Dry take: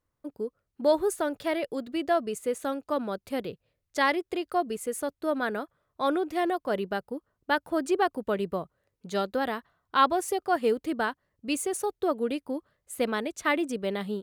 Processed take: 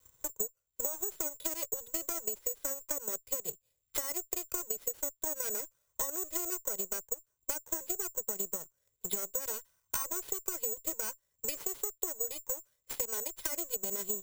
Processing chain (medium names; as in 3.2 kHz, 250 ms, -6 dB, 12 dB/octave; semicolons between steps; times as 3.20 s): comb filter that takes the minimum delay 2 ms; dynamic bell 440 Hz, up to +4 dB, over -40 dBFS, Q 1.3; peak limiter -22.5 dBFS, peak gain reduction 10.5 dB; transient shaper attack +9 dB, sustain -3 dB; compression 2.5:1, threshold -29 dBFS, peak gain reduction 7.5 dB; four-pole ladder low-pass 4.3 kHz, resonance 80%; low-pass that closes with the level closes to 2.1 kHz, closed at -38 dBFS; careless resampling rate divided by 6×, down filtered, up zero stuff; three bands compressed up and down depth 70%